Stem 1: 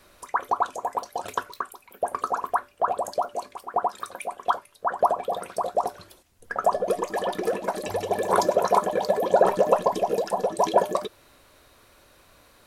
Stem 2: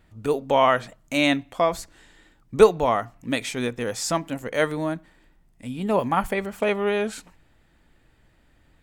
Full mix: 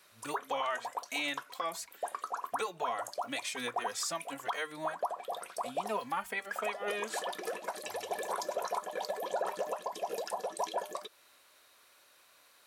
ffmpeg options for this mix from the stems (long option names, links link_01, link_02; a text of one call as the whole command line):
ffmpeg -i stem1.wav -i stem2.wav -filter_complex "[0:a]volume=-3.5dB[link_01];[1:a]asplit=2[link_02][link_03];[link_03]adelay=2.9,afreqshift=2.9[link_04];[link_02][link_04]amix=inputs=2:normalize=1,volume=0dB[link_05];[link_01][link_05]amix=inputs=2:normalize=0,highpass=frequency=1400:poles=1,alimiter=limit=-24dB:level=0:latency=1:release=238" out.wav